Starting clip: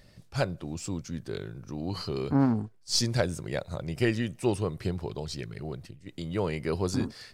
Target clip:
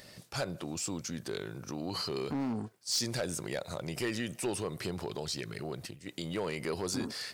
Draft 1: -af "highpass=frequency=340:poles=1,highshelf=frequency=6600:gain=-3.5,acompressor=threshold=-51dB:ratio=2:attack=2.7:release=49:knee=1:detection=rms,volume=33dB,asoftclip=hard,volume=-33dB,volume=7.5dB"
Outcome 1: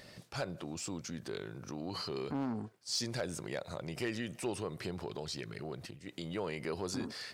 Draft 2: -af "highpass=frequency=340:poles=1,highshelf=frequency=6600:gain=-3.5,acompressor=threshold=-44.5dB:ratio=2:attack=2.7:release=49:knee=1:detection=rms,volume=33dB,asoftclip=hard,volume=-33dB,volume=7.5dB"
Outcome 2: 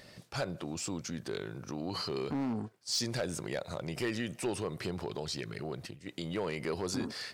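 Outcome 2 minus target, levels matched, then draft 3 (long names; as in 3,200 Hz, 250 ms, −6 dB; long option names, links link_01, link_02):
8,000 Hz band −2.5 dB
-af "highpass=frequency=340:poles=1,highshelf=frequency=6600:gain=6,acompressor=threshold=-44.5dB:ratio=2:attack=2.7:release=49:knee=1:detection=rms,volume=33dB,asoftclip=hard,volume=-33dB,volume=7.5dB"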